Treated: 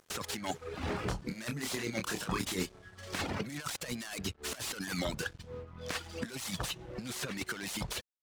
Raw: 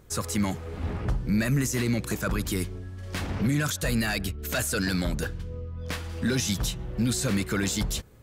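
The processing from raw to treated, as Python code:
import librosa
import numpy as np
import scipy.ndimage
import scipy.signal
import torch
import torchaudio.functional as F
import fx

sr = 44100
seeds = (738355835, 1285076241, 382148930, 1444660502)

y = fx.tracing_dist(x, sr, depth_ms=0.48)
y = scipy.signal.sosfilt(scipy.signal.butter(2, 9600.0, 'lowpass', fs=sr, output='sos'), y)
y = fx.dereverb_blind(y, sr, rt60_s=0.84)
y = fx.highpass(y, sr, hz=320.0, slope=6)
y = fx.high_shelf(y, sr, hz=2700.0, db=7.0)
y = fx.over_compress(y, sr, threshold_db=-34.0, ratio=-0.5)
y = np.sign(y) * np.maximum(np.abs(y) - 10.0 ** (-53.0 / 20.0), 0.0)
y = fx.doubler(y, sr, ms=27.0, db=-6.0, at=(0.85, 2.94))
y = fx.slew_limit(y, sr, full_power_hz=100.0)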